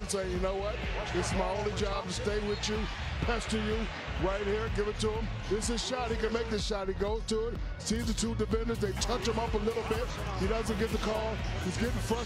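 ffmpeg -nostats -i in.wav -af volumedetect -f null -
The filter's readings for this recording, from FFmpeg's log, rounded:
mean_volume: -31.8 dB
max_volume: -16.2 dB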